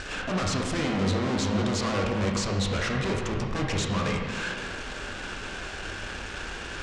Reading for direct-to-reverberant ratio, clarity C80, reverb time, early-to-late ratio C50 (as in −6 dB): −0.5 dB, 4.0 dB, 1.7 s, 2.0 dB